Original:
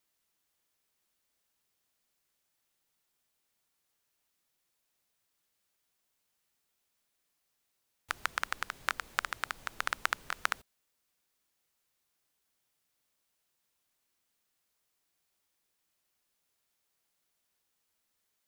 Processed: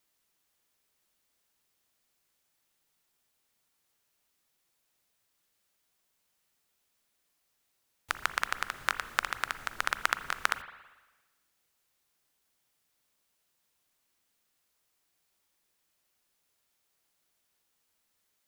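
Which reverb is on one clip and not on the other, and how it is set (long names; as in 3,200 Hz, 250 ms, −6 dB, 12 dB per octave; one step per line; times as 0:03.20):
spring reverb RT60 1.2 s, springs 39/56 ms, chirp 60 ms, DRR 12 dB
level +3 dB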